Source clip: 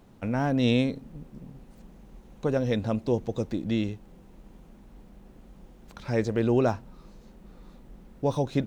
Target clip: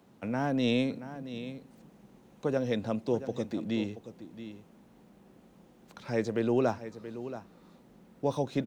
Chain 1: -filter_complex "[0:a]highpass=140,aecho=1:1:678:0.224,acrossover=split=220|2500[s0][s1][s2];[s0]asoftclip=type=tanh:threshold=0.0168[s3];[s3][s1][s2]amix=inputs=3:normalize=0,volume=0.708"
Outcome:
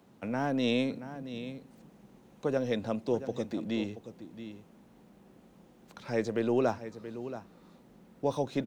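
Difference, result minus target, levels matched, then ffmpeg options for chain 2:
saturation: distortion +10 dB
-filter_complex "[0:a]highpass=140,aecho=1:1:678:0.224,acrossover=split=220|2500[s0][s1][s2];[s0]asoftclip=type=tanh:threshold=0.0473[s3];[s3][s1][s2]amix=inputs=3:normalize=0,volume=0.708"

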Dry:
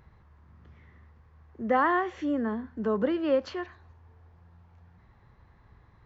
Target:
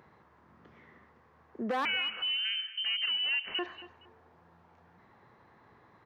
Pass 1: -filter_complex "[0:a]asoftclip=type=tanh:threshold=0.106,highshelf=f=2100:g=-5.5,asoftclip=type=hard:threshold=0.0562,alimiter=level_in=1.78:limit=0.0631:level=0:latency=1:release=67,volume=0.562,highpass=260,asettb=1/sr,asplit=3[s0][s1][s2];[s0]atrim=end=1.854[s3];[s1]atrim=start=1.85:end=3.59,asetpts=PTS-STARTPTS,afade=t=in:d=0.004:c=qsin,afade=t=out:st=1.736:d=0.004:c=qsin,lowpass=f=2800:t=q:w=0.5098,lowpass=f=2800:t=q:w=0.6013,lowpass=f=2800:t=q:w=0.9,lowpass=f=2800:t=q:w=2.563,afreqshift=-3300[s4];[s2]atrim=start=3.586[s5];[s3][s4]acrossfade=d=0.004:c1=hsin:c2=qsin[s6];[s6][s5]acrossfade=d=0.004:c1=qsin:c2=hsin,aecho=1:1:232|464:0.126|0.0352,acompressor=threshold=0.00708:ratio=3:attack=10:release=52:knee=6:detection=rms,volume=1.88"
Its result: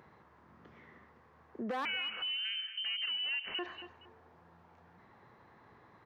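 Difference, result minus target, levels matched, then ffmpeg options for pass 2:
compression: peak gain reduction +5.5 dB
-filter_complex "[0:a]asoftclip=type=tanh:threshold=0.106,highshelf=f=2100:g=-5.5,asoftclip=type=hard:threshold=0.0562,alimiter=level_in=1.78:limit=0.0631:level=0:latency=1:release=67,volume=0.562,highpass=260,asettb=1/sr,asplit=3[s0][s1][s2];[s0]atrim=end=1.854[s3];[s1]atrim=start=1.85:end=3.59,asetpts=PTS-STARTPTS,afade=t=in:d=0.004:c=qsin,afade=t=out:st=1.736:d=0.004:c=qsin,lowpass=f=2800:t=q:w=0.5098,lowpass=f=2800:t=q:w=0.6013,lowpass=f=2800:t=q:w=0.9,lowpass=f=2800:t=q:w=2.563,afreqshift=-3300[s4];[s2]atrim=start=3.586[s5];[s3][s4]acrossfade=d=0.004:c1=hsin:c2=qsin[s6];[s6][s5]acrossfade=d=0.004:c1=qsin:c2=hsin,aecho=1:1:232|464:0.126|0.0352,acompressor=threshold=0.0178:ratio=3:attack=10:release=52:knee=6:detection=rms,volume=1.88"

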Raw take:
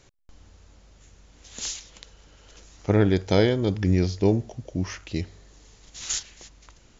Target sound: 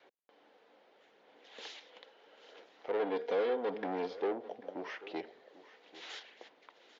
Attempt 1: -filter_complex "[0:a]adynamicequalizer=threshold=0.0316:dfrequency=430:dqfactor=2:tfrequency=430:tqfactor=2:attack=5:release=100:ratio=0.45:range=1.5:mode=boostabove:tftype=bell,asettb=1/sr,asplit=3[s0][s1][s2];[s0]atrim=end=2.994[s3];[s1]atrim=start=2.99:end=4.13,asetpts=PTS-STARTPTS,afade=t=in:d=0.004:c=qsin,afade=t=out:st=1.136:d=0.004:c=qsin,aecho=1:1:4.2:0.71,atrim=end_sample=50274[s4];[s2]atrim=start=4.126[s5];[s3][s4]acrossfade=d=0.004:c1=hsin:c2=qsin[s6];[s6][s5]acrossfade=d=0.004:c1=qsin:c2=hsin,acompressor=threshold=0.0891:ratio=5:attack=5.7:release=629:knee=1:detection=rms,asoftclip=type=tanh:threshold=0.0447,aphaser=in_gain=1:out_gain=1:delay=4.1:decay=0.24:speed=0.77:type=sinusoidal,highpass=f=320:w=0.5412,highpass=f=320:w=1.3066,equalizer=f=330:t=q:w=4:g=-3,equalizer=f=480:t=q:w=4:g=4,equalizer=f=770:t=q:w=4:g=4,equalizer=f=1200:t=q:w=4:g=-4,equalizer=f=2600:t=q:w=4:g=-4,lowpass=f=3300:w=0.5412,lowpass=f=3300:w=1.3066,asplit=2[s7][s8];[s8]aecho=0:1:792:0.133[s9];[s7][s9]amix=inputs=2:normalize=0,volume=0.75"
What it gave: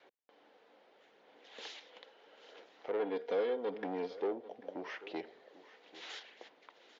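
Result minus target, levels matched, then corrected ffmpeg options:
compression: peak gain reduction +5.5 dB
-filter_complex "[0:a]adynamicequalizer=threshold=0.0316:dfrequency=430:dqfactor=2:tfrequency=430:tqfactor=2:attack=5:release=100:ratio=0.45:range=1.5:mode=boostabove:tftype=bell,asettb=1/sr,asplit=3[s0][s1][s2];[s0]atrim=end=2.994[s3];[s1]atrim=start=2.99:end=4.13,asetpts=PTS-STARTPTS,afade=t=in:d=0.004:c=qsin,afade=t=out:st=1.136:d=0.004:c=qsin,aecho=1:1:4.2:0.71,atrim=end_sample=50274[s4];[s2]atrim=start=4.126[s5];[s3][s4]acrossfade=d=0.004:c1=hsin:c2=qsin[s6];[s6][s5]acrossfade=d=0.004:c1=qsin:c2=hsin,acompressor=threshold=0.2:ratio=5:attack=5.7:release=629:knee=1:detection=rms,asoftclip=type=tanh:threshold=0.0447,aphaser=in_gain=1:out_gain=1:delay=4.1:decay=0.24:speed=0.77:type=sinusoidal,highpass=f=320:w=0.5412,highpass=f=320:w=1.3066,equalizer=f=330:t=q:w=4:g=-3,equalizer=f=480:t=q:w=4:g=4,equalizer=f=770:t=q:w=4:g=4,equalizer=f=1200:t=q:w=4:g=-4,equalizer=f=2600:t=q:w=4:g=-4,lowpass=f=3300:w=0.5412,lowpass=f=3300:w=1.3066,asplit=2[s7][s8];[s8]aecho=0:1:792:0.133[s9];[s7][s9]amix=inputs=2:normalize=0,volume=0.75"

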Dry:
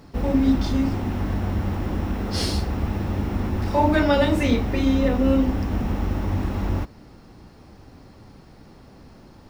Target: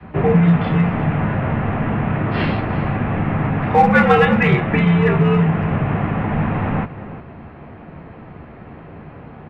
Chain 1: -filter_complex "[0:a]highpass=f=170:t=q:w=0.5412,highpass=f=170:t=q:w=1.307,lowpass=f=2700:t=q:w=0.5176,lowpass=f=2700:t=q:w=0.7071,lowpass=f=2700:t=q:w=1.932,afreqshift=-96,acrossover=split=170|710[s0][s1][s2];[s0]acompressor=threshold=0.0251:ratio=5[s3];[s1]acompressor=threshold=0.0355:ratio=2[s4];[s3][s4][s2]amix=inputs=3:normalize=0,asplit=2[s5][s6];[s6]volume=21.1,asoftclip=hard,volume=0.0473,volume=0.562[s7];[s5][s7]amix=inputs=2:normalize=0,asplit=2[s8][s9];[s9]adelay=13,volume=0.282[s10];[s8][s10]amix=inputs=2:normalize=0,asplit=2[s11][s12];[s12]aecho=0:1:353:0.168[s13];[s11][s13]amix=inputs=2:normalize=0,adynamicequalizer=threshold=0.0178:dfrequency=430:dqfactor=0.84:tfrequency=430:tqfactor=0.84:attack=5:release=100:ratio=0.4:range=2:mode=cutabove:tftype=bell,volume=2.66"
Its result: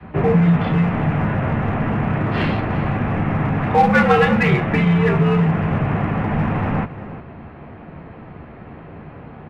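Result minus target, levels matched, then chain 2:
overload inside the chain: distortion +11 dB
-filter_complex "[0:a]highpass=f=170:t=q:w=0.5412,highpass=f=170:t=q:w=1.307,lowpass=f=2700:t=q:w=0.5176,lowpass=f=2700:t=q:w=0.7071,lowpass=f=2700:t=q:w=1.932,afreqshift=-96,acrossover=split=170|710[s0][s1][s2];[s0]acompressor=threshold=0.0251:ratio=5[s3];[s1]acompressor=threshold=0.0355:ratio=2[s4];[s3][s4][s2]amix=inputs=3:normalize=0,asplit=2[s5][s6];[s6]volume=8.91,asoftclip=hard,volume=0.112,volume=0.562[s7];[s5][s7]amix=inputs=2:normalize=0,asplit=2[s8][s9];[s9]adelay=13,volume=0.282[s10];[s8][s10]amix=inputs=2:normalize=0,asplit=2[s11][s12];[s12]aecho=0:1:353:0.168[s13];[s11][s13]amix=inputs=2:normalize=0,adynamicequalizer=threshold=0.0178:dfrequency=430:dqfactor=0.84:tfrequency=430:tqfactor=0.84:attack=5:release=100:ratio=0.4:range=2:mode=cutabove:tftype=bell,volume=2.66"

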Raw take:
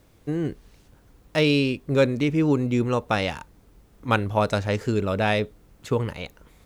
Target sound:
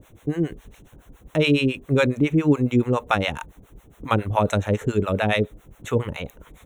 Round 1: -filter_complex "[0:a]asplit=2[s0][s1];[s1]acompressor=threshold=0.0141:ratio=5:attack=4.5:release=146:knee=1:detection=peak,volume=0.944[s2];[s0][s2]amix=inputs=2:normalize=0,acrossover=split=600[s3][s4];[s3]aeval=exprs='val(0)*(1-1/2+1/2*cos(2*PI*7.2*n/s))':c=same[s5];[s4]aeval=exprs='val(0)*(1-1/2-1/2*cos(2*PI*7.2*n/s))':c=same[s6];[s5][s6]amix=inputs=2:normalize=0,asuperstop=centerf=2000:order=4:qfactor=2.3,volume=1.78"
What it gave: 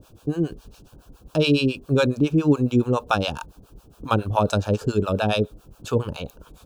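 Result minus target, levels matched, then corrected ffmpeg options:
2 kHz band -3.0 dB
-filter_complex "[0:a]asplit=2[s0][s1];[s1]acompressor=threshold=0.0141:ratio=5:attack=4.5:release=146:knee=1:detection=peak,volume=0.944[s2];[s0][s2]amix=inputs=2:normalize=0,acrossover=split=600[s3][s4];[s3]aeval=exprs='val(0)*(1-1/2+1/2*cos(2*PI*7.2*n/s))':c=same[s5];[s4]aeval=exprs='val(0)*(1-1/2-1/2*cos(2*PI*7.2*n/s))':c=same[s6];[s5][s6]amix=inputs=2:normalize=0,asuperstop=centerf=4800:order=4:qfactor=2.3,volume=1.78"

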